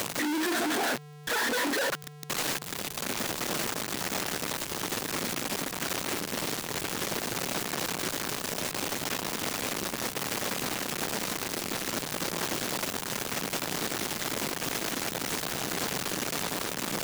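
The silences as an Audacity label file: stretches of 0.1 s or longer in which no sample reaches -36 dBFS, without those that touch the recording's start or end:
0.970000	1.270000	silence
2.080000	2.230000	silence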